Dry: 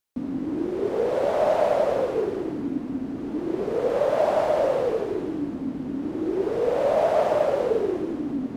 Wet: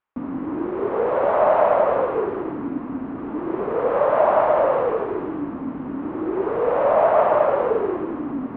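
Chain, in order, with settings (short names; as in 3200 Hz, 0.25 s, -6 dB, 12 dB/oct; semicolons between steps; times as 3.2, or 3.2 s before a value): LPF 2700 Hz 24 dB/oct; bell 1100 Hz +12 dB 1.1 oct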